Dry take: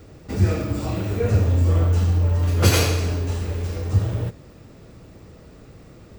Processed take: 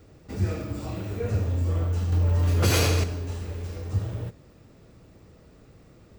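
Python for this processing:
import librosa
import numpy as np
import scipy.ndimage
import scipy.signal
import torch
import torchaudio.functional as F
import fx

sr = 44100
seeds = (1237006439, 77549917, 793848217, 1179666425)

y = fx.env_flatten(x, sr, amount_pct=70, at=(2.12, 3.04))
y = F.gain(torch.from_numpy(y), -7.5).numpy()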